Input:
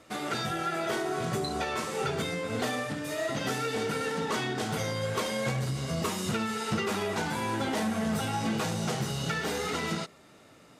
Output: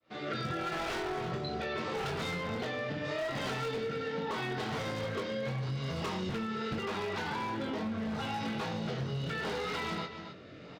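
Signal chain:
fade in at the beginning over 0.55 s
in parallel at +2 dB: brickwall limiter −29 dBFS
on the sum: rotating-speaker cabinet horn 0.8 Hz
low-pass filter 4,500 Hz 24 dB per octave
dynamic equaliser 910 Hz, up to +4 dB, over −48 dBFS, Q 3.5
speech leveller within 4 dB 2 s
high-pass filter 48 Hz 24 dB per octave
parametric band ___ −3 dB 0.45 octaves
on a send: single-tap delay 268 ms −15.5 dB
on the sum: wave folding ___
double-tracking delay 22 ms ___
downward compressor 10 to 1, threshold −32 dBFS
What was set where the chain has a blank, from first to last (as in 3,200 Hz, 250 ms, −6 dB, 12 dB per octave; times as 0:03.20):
240 Hz, −23 dBFS, −6 dB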